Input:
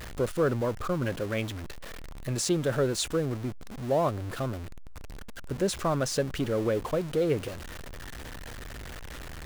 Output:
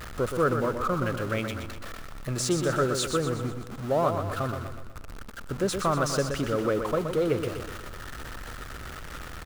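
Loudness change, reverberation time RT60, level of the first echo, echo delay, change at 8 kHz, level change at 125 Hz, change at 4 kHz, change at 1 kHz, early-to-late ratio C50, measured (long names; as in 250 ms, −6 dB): +1.5 dB, no reverb audible, −7.0 dB, 123 ms, +1.0 dB, +1.0 dB, +1.0 dB, +5.5 dB, no reverb audible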